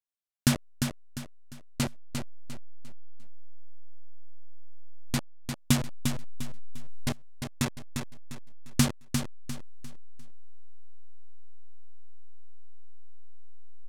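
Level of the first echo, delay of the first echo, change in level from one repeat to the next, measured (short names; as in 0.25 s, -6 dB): -6.0 dB, 0.35 s, -9.5 dB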